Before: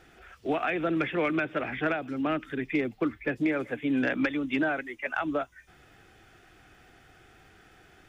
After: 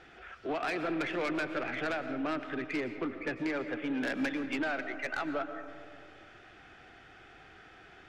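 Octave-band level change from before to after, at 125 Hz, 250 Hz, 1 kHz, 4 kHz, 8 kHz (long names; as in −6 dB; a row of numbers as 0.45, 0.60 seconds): −8.5 dB, −6.0 dB, −4.0 dB, −1.0 dB, can't be measured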